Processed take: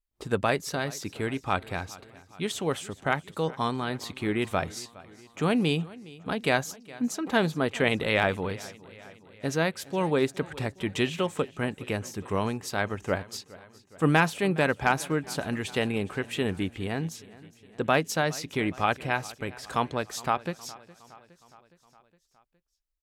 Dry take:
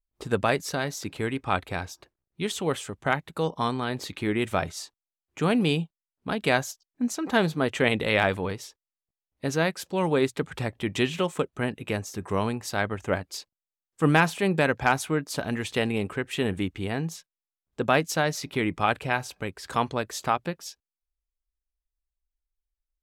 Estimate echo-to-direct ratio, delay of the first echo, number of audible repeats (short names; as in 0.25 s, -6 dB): -18.5 dB, 0.414 s, 4